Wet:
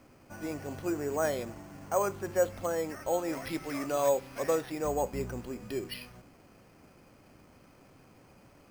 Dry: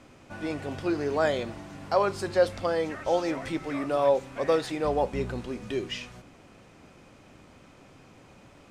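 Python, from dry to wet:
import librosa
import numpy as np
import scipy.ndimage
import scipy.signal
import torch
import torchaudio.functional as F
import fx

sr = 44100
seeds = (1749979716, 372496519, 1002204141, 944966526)

y = fx.high_shelf(x, sr, hz=3100.0, db=fx.steps((0.0, -4.5), (3.32, 9.5), (4.49, -2.5)))
y = np.repeat(scipy.signal.resample_poly(y, 1, 6), 6)[:len(y)]
y = F.gain(torch.from_numpy(y), -4.5).numpy()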